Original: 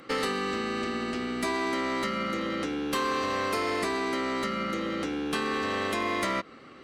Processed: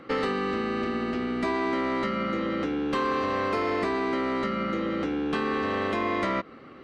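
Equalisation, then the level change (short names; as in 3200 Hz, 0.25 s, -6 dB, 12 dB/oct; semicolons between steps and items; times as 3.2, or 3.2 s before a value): tape spacing loss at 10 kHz 23 dB; +4.0 dB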